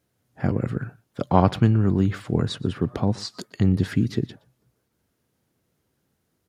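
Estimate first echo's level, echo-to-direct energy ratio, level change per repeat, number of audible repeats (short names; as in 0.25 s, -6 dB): -23.5 dB, -23.5 dB, no steady repeat, 1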